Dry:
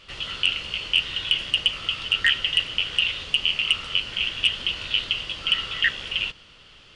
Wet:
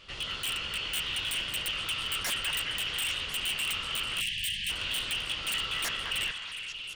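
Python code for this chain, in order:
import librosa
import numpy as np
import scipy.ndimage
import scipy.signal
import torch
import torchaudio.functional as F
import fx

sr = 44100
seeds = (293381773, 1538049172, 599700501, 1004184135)

y = 10.0 ** (-23.5 / 20.0) * (np.abs((x / 10.0 ** (-23.5 / 20.0) + 3.0) % 4.0 - 2.0) - 1.0)
y = fx.echo_stepped(y, sr, ms=210, hz=1200.0, octaves=0.7, feedback_pct=70, wet_db=-0.5)
y = fx.spec_erase(y, sr, start_s=4.21, length_s=0.49, low_hz=220.0, high_hz=1600.0)
y = y * 10.0 ** (-3.0 / 20.0)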